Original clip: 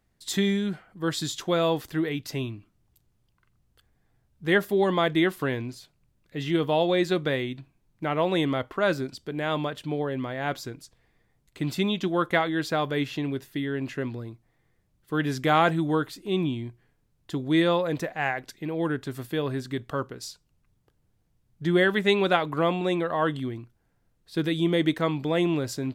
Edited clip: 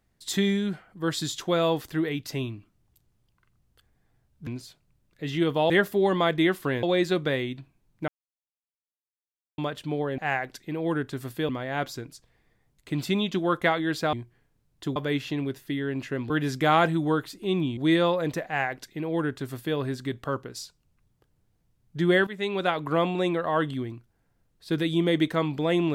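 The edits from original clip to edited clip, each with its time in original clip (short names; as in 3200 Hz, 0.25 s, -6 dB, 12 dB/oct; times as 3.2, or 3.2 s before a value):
4.47–5.6 move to 6.83
8.08–9.58 mute
14.16–15.13 cut
16.6–17.43 move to 12.82
18.12–19.43 copy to 10.18
21.93–22.58 fade in, from -14.5 dB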